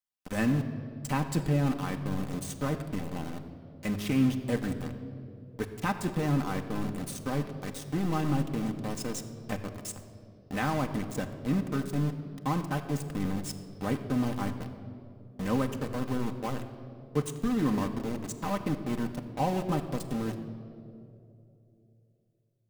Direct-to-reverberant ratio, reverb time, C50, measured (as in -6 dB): 3.5 dB, 2.8 s, 10.0 dB